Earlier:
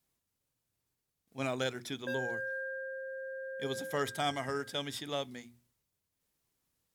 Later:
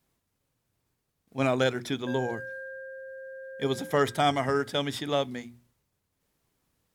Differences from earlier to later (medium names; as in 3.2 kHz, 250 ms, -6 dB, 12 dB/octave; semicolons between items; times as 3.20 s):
speech +10.0 dB; master: add treble shelf 2.9 kHz -8 dB